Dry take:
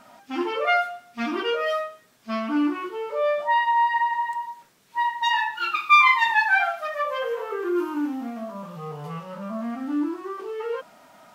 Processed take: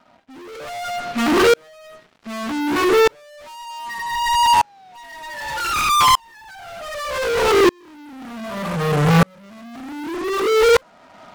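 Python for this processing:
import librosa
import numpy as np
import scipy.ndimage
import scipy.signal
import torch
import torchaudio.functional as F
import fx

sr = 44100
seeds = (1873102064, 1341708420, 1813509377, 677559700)

p1 = scipy.signal.sosfilt(scipy.signal.butter(2, 2100.0, 'lowpass', fs=sr, output='sos'), x)
p2 = fx.env_lowpass_down(p1, sr, base_hz=650.0, full_db=-17.0)
p3 = fx.over_compress(p2, sr, threshold_db=-32.0, ratio=-1.0)
p4 = p2 + (p3 * 10.0 ** (1.5 / 20.0))
p5 = fx.spec_paint(p4, sr, seeds[0], shape='fall', start_s=3.69, length_s=1.95, low_hz=520.0, high_hz=1300.0, level_db=-41.0)
p6 = fx.rotary(p5, sr, hz=0.8)
p7 = fx.fuzz(p6, sr, gain_db=42.0, gate_db=-50.0)
p8 = p7 + 10.0 ** (-19.0 / 20.0) * np.pad(p7, (int(84 * sr / 1000.0), 0))[:len(p7)]
p9 = fx.tremolo_decay(p8, sr, direction='swelling', hz=0.65, depth_db=38)
y = p9 * 10.0 ** (3.5 / 20.0)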